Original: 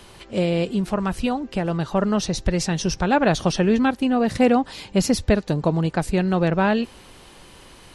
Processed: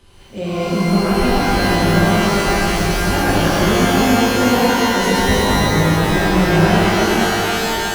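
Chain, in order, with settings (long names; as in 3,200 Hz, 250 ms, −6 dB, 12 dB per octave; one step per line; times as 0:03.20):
low-shelf EQ 180 Hz +9 dB
automatic gain control
reverb with rising layers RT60 3.6 s, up +12 semitones, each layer −2 dB, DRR −9 dB
level −11.5 dB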